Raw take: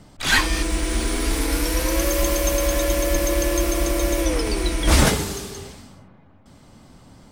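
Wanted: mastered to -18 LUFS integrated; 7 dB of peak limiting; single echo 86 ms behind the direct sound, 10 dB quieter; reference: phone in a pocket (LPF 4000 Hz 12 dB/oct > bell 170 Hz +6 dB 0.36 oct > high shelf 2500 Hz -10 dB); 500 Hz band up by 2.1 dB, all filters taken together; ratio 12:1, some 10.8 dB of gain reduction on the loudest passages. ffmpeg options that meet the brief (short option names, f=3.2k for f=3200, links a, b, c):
-af "equalizer=f=500:t=o:g=3,acompressor=threshold=-21dB:ratio=12,alimiter=limit=-20dB:level=0:latency=1,lowpass=4k,equalizer=f=170:t=o:w=0.36:g=6,highshelf=f=2.5k:g=-10,aecho=1:1:86:0.316,volume=13.5dB"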